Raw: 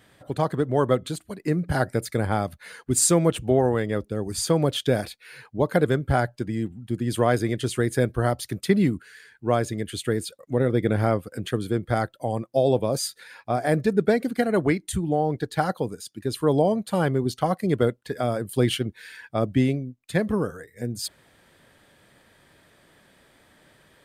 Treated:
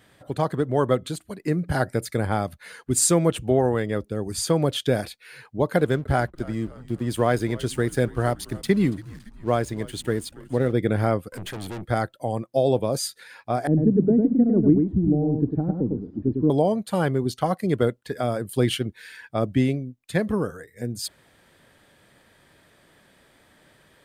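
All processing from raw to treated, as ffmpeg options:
-filter_complex "[0:a]asettb=1/sr,asplit=3[a][b][c];[a]atrim=end=5.774[d];[b]atrim=start=5.77:end=10.73,asetpts=PTS-STARTPTS,afade=t=in:d=0.004:c=qsin,afade=t=out:st=4.956:d=0.004:c=qsin,aeval=exprs='sgn(val(0))*max(abs(val(0))-0.00501,0)':c=same,asplit=6[e][f][g][h][i][j];[f]adelay=282,afreqshift=-85,volume=-20dB[k];[g]adelay=564,afreqshift=-170,volume=-24.7dB[l];[h]adelay=846,afreqshift=-255,volume=-29.5dB[m];[i]adelay=1128,afreqshift=-340,volume=-34.2dB[n];[j]adelay=1410,afreqshift=-425,volume=-38.9dB[o];[e][k][l][m][n][o]amix=inputs=6:normalize=0,atrim=end_sample=218736[p];[c]atrim=start=10.726[q];[d][p]acrossfade=d=0.004:c1=hsin:c2=qsin[r];[r][q]acrossfade=d=0.004:c1=qsin:c2=hsin,asettb=1/sr,asplit=3[s][t][u];[s]atrim=end=11.324[v];[t]atrim=start=11.32:end=11.86,asetpts=PTS-STARTPTS,afade=t=in:d=0.004:c=qsin,afade=t=out:st=0.536:d=0.004:c=qsin,acontrast=64,aeval=exprs='(tanh(35.5*val(0)+0.5)-tanh(0.5))/35.5':c=same[w];[u]atrim=start=11.856[x];[v][w]acrossfade=d=0.004:c1=hsin:c2=qsin[y];[y][x]acrossfade=d=0.004:c1=qsin:c2=hsin,asettb=1/sr,asplit=3[z][aa][ab];[z]atrim=end=13.674[ac];[aa]atrim=start=13.67:end=16.5,asetpts=PTS-STARTPTS,afade=t=in:d=0.004:c=qsin,afade=t=out:st=2.826:d=0.004:c=qsin,aeval=exprs='val(0)+0.5*0.0224*sgn(val(0))':c=same,lowpass=f=280:t=q:w=2.1,aecho=1:1:102:0.631,atrim=end_sample=124803[ad];[ab]atrim=start=16.496[ae];[ac][ad]acrossfade=d=0.004:c1=hsin:c2=qsin[af];[af][ae]acrossfade=d=0.004:c1=qsin:c2=hsin"

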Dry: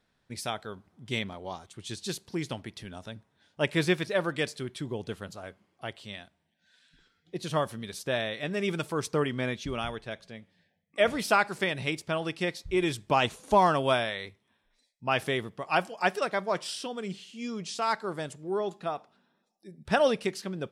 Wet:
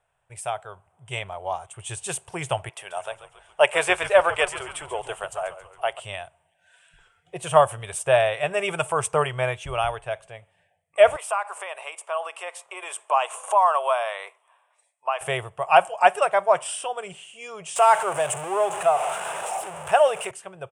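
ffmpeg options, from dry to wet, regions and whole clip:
-filter_complex "[0:a]asettb=1/sr,asplit=3[a][b][c];[a]atrim=end=2.694[d];[b]atrim=start=2.69:end=6,asetpts=PTS-STARTPTS,afade=t=in:d=0.004:c=qsin,afade=t=out:st=3.306:d=0.004:c=qsin,highpass=420,asplit=7[e][f][g][h][i][j][k];[f]adelay=137,afreqshift=-89,volume=-12.5dB[l];[g]adelay=274,afreqshift=-178,volume=-17.7dB[m];[h]adelay=411,afreqshift=-267,volume=-22.9dB[n];[i]adelay=548,afreqshift=-356,volume=-28.1dB[o];[j]adelay=685,afreqshift=-445,volume=-33.3dB[p];[k]adelay=822,afreqshift=-534,volume=-38.5dB[q];[e][l][m][n][o][p][q]amix=inputs=7:normalize=0,atrim=end_sample=145971,adynamicequalizer=threshold=0.00316:dfrequency=6800:dqfactor=0.7:tfrequency=6800:tqfactor=0.7:attack=5:release=100:ratio=0.375:range=3:mode=cutabove:tftype=highshelf[r];[c]atrim=start=5.996[s];[d][r]acrossfade=d=0.004:c1=hsin:c2=qsin[t];[t][s]acrossfade=d=0.004:c1=qsin:c2=hsin,asettb=1/sr,asplit=3[u][v][w];[u]atrim=end=11.164[x];[v]atrim=start=11.16:end=15.21,asetpts=PTS-STARTPTS,afade=t=in:d=0.004:c=qsin,afade=t=out:st=4.046:d=0.004:c=qsin,acompressor=threshold=-37dB:ratio=3:attack=3.2:release=140:knee=1:detection=peak,highpass=f=470:w=0.5412,highpass=f=470:w=1.3066,equalizer=f=1.1k:t=o:w=0.38:g=9[y];[w]atrim=start=15.206[z];[x][y]acrossfade=d=0.004:c1=hsin:c2=qsin[aa];[aa][z]acrossfade=d=0.004:c1=qsin:c2=hsin,asettb=1/sr,asplit=3[ab][ac][ad];[ab]atrim=end=17.764[ae];[ac]atrim=start=17.76:end=20.31,asetpts=PTS-STARTPTS,afade=t=in:d=0.004:c=qsin,afade=t=out:st=2.546:d=0.004:c=qsin,aeval=exprs='val(0)+0.5*0.0266*sgn(val(0))':c=same,highpass=200,acompressor=mode=upward:threshold=-28dB:ratio=2.5:attack=3.2:release=140:knee=2.83:detection=peak[af];[ad]atrim=start=20.306[ag];[ae][af]acrossfade=d=0.004:c1=hsin:c2=qsin[ah];[ah][ag]acrossfade=d=0.004:c1=qsin:c2=hsin,firequalizer=gain_entry='entry(130,0);entry(240,-28);entry(370,-7);entry(660,9);entry(1900,-2);entry(2800,4);entry(4200,-18);entry(8700,11);entry(13000,-14)':delay=0.05:min_phase=1,dynaudnorm=f=270:g=13:m=11dB,volume=-1dB"

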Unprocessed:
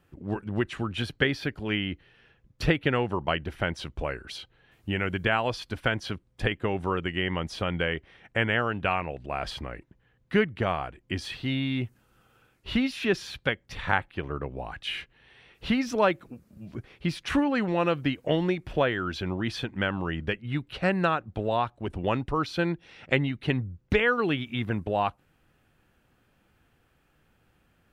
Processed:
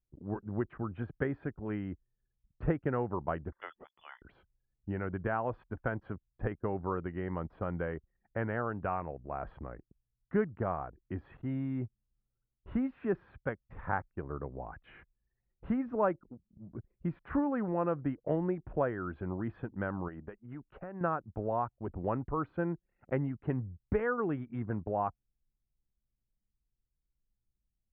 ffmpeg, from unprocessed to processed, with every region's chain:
-filter_complex "[0:a]asettb=1/sr,asplit=3[a][b][c];[a]atrim=end=3.524[d];[b]atrim=start=3.52:end=4.22,asetpts=PTS-STARTPTS,afade=t=in:d=0.004:c=qsin,afade=t=out:st=0.696:d=0.004:c=qsin,lowshelf=f=230:g=-4.5,lowpass=f=3k:t=q:w=0.5098,lowpass=f=3k:t=q:w=0.6013,lowpass=f=3k:t=q:w=0.9,lowpass=f=3k:t=q:w=2.563,afreqshift=-3500[e];[c]atrim=start=4.216[f];[d][e]acrossfade=d=0.004:c1=hsin:c2=qsin[g];[g][f]acrossfade=d=0.004:c1=qsin:c2=hsin,asettb=1/sr,asplit=3[h][i][j];[h]atrim=end=20.084[k];[i]atrim=start=20.08:end=21.01,asetpts=PTS-STARTPTS,afade=t=in:d=0.004:c=qsin,afade=t=out:st=0.926:d=0.004:c=qsin,equalizer=f=97:w=0.7:g=-10,acompressor=threshold=-31dB:ratio=12:attack=3.2:release=140:knee=1:detection=peak[l];[j]atrim=start=21.006[m];[k][l]acrossfade=d=0.004:c1=hsin:c2=qsin[n];[n][m]acrossfade=d=0.004:c1=qsin:c2=hsin,anlmdn=0.0631,lowpass=f=1.4k:w=0.5412,lowpass=f=1.4k:w=1.3066,volume=-6dB"

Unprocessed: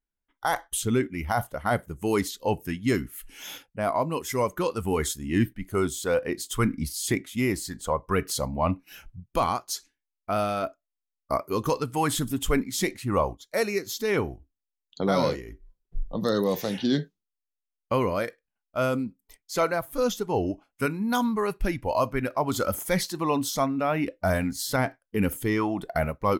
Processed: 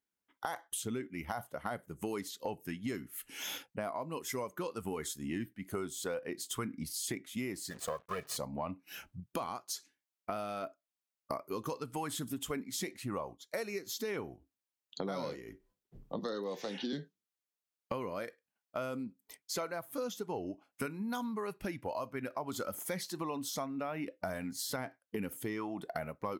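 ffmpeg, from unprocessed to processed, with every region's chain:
-filter_complex "[0:a]asettb=1/sr,asplit=3[a][b][c];[a]atrim=end=7.704[d];[b]atrim=start=7.7:end=8.37,asetpts=PTS-STARTPTS,afade=t=in:d=0.004:c=qsin,afade=t=out:st=0.666:d=0.004:c=qsin,aeval=exprs='if(lt(val(0),0),0.251*val(0),val(0))':c=same,aecho=1:1:1.7:0.68,atrim=end_sample=29547,acrusher=bits=7:mix=0:aa=0.5[e];[c]atrim=start=8.366[f];[d][e]acrossfade=d=0.004:c1=hsin:c2=qsin[g];[g][f]acrossfade=d=0.004:c1=qsin:c2=hsin,asettb=1/sr,asplit=3[h][i][j];[h]atrim=end=16.194[k];[i]atrim=start=16.19:end=16.93,asetpts=PTS-STARTPTS,afade=t=in:d=0.004:c=qsin,afade=t=out:st=0.736:d=0.004:c=qsin,acrossover=split=220 7700:gain=0.224 1 0.1[l][m][n];[l][m][n]amix=inputs=3:normalize=0,bandreject=f=620:w=12[o];[j]atrim=start=16.926[p];[k][o]acrossfade=d=0.004:c1=hsin:c2=qsin[q];[q][p]acrossfade=d=0.004:c1=qsin:c2=hsin,highpass=140,acompressor=threshold=-37dB:ratio=6,volume=1dB"

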